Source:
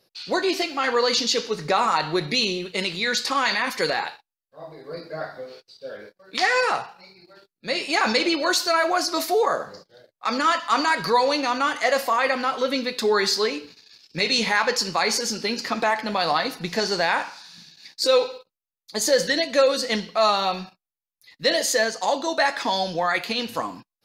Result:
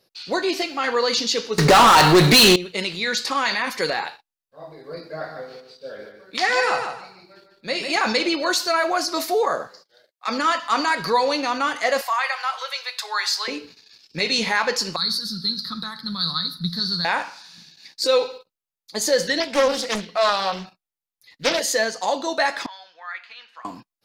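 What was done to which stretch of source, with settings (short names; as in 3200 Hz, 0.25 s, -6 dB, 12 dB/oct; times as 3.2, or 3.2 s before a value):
1.58–2.56 sample leveller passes 5
5.09–7.99 feedback echo 0.149 s, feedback 24%, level -6.5 dB
9.67–10.28 HPF 1300 Hz 6 dB/oct
12.01–13.48 inverse Chebyshev high-pass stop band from 230 Hz, stop band 60 dB
14.96–17.05 EQ curve 120 Hz 0 dB, 180 Hz +8 dB, 250 Hz -9 dB, 390 Hz -18 dB, 720 Hz -28 dB, 1300 Hz -3 dB, 2700 Hz -28 dB, 3900 Hz +11 dB, 6900 Hz -19 dB, 9900 Hz -1 dB
19.4–21.6 Doppler distortion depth 0.72 ms
22.66–23.65 ladder band-pass 1800 Hz, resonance 35%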